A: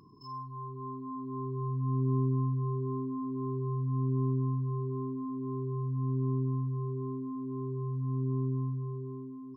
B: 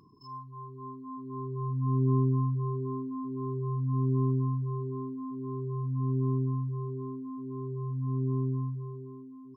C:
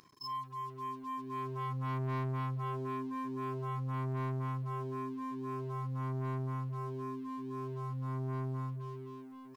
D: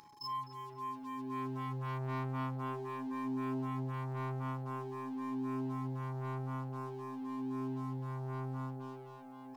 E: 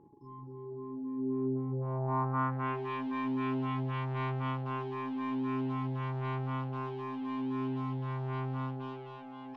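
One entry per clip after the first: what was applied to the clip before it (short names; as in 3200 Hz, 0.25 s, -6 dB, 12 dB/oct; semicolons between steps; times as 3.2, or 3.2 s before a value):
reverb removal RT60 0.52 s; upward expander 1.5:1, over -42 dBFS; gain +5 dB
tilt shelf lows -8.5 dB, about 850 Hz; sample leveller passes 3; gain -7.5 dB
whine 840 Hz -58 dBFS; darkening echo 0.256 s, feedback 81%, low-pass 1400 Hz, level -4.5 dB
in parallel at -8 dB: one-sided clip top -40.5 dBFS; on the sum: low-pass sweep 380 Hz -> 3100 Hz, 1.64–2.88; gain +1.5 dB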